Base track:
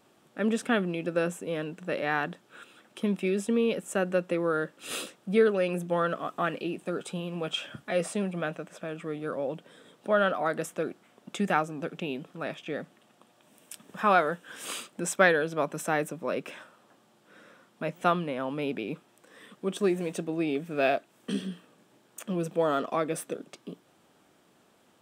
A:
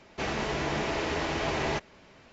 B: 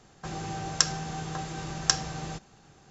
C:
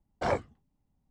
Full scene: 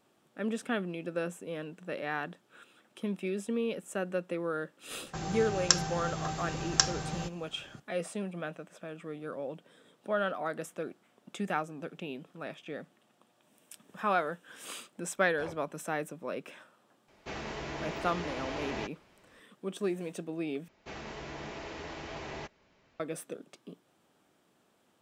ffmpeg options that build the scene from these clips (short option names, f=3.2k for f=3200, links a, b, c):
-filter_complex "[1:a]asplit=2[a][b];[0:a]volume=-6.5dB,asplit=2[c][d];[c]atrim=end=20.684[e];[b]atrim=end=2.32,asetpts=PTS-STARTPTS,volume=-12dB[f];[d]atrim=start=22.996[g];[2:a]atrim=end=2.9,asetpts=PTS-STARTPTS,volume=-1dB,afade=t=in:d=0.004:c=hsin,afade=t=out:st=2.896:d=0.004:c=hsin,adelay=4900[h];[3:a]atrim=end=1.1,asetpts=PTS-STARTPTS,volume=-16dB,afade=t=in:d=0.004:c=hsin,afade=t=out:st=1.096:d=0.004:c=hsin,adelay=15160[i];[a]atrim=end=2.32,asetpts=PTS-STARTPTS,volume=-8.5dB,afade=t=in:d=0.004:c=hsin,afade=t=out:st=2.316:d=0.004:c=hsin,adelay=17080[j];[e][f]acrossfade=d=0.004:c1=hsin:c2=hsin[k];[k][g]acrossfade=d=0.004:c1=hsin:c2=hsin[l];[l][h][i][j]amix=inputs=4:normalize=0"